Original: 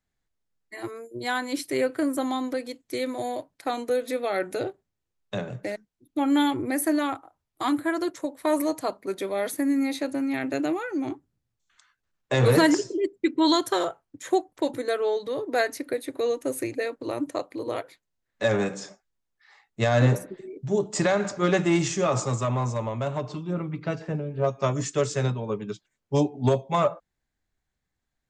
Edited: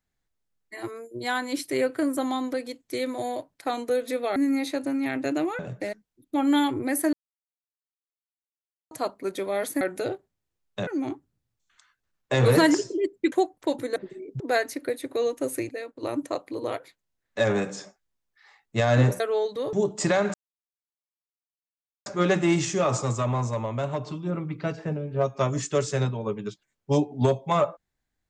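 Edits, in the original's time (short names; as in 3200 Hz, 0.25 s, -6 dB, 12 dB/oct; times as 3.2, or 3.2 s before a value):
4.36–5.42 swap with 9.64–10.87
6.96–8.74 mute
13.32–14.27 cut
14.91–15.44 swap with 20.24–20.68
16.73–17.07 gain -6.5 dB
21.29 insert silence 1.72 s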